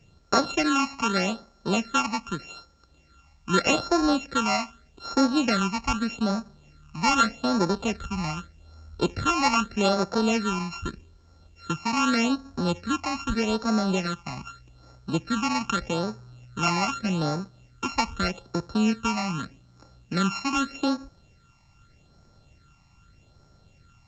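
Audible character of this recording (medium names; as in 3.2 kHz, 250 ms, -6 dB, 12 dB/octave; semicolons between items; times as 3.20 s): a buzz of ramps at a fixed pitch in blocks of 32 samples; phasing stages 8, 0.82 Hz, lowest notch 450–2900 Hz; A-law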